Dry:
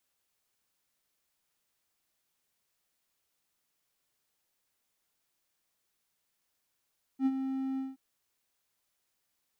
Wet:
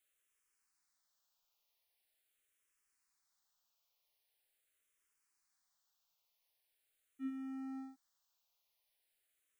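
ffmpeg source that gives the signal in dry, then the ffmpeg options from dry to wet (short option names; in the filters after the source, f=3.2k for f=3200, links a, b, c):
-f lavfi -i "aevalsrc='0.0944*(1-4*abs(mod(266*t+0.25,1)-0.5))':d=0.774:s=44100,afade=t=in:d=0.07,afade=t=out:st=0.07:d=0.046:silence=0.376,afade=t=out:st=0.59:d=0.184"
-filter_complex "[0:a]equalizer=f=160:w=0.53:g=-13.5,asoftclip=type=tanh:threshold=-30.5dB,asplit=2[a][b];[b]afreqshift=-0.43[c];[a][c]amix=inputs=2:normalize=1"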